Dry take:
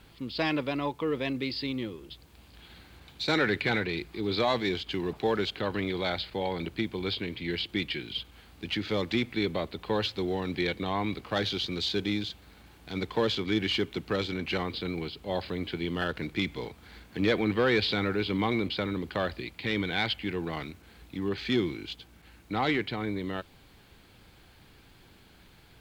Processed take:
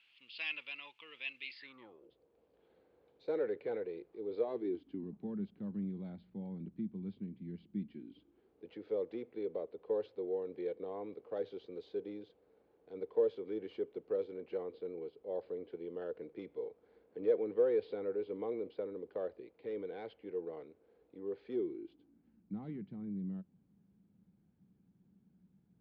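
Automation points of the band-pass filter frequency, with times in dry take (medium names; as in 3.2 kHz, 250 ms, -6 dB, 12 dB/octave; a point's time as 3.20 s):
band-pass filter, Q 5.9
1.47 s 2.7 kHz
2.07 s 480 Hz
4.38 s 480 Hz
5.15 s 200 Hz
7.80 s 200 Hz
8.65 s 470 Hz
21.49 s 470 Hz
22.53 s 190 Hz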